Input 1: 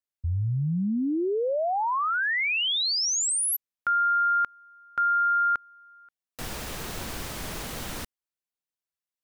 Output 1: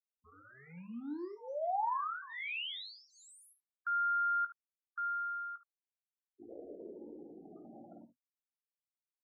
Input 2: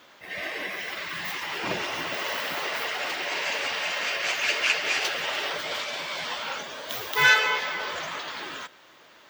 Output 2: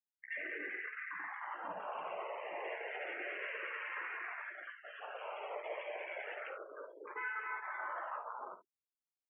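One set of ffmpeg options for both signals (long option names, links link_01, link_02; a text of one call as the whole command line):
ffmpeg -i in.wav -filter_complex "[0:a]acompressor=threshold=-28dB:ratio=4:attack=3.6:release=547:knee=6:detection=rms,adynamicequalizer=threshold=0.00355:dfrequency=320:dqfactor=1.6:tfrequency=320:tqfactor=1.6:attack=5:release=100:ratio=0.438:range=2:mode=boostabove:tftype=bell,afwtdn=0.02,alimiter=level_in=4.5dB:limit=-24dB:level=0:latency=1:release=19,volume=-4.5dB,acrusher=bits=6:mix=0:aa=0.5,bandreject=frequency=50:width_type=h:width=6,bandreject=frequency=100:width_type=h:width=6,bandreject=frequency=150:width_type=h:width=6,bandreject=frequency=200:width_type=h:width=6,bandreject=frequency=250:width_type=h:width=6,afftfilt=real='re*gte(hypot(re,im),0.0141)':imag='im*gte(hypot(re,im),0.0141)':win_size=1024:overlap=0.75,highpass=180,lowpass=7000,acrossover=split=320 2600:gain=0.158 1 0.126[link_01][link_02][link_03];[link_01][link_02][link_03]amix=inputs=3:normalize=0,asplit=2[link_04][link_05];[link_05]aecho=0:1:17|52|73:0.335|0.251|0.188[link_06];[link_04][link_06]amix=inputs=2:normalize=0,asplit=2[link_07][link_08];[link_08]afreqshift=-0.31[link_09];[link_07][link_09]amix=inputs=2:normalize=1,volume=-1dB" out.wav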